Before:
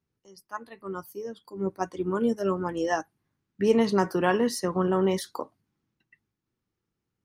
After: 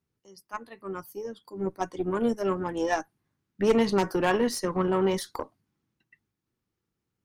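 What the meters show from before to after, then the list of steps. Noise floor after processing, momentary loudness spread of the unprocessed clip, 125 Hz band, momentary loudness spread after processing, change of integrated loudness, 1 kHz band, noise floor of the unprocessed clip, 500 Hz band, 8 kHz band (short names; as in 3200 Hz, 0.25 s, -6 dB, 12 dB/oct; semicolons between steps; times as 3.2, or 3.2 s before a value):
-84 dBFS, 15 LU, -1.5 dB, 15 LU, -1.0 dB, -0.5 dB, -84 dBFS, -0.5 dB, 0.0 dB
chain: added harmonics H 4 -26 dB, 8 -29 dB, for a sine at -9.5 dBFS; wavefolder -13.5 dBFS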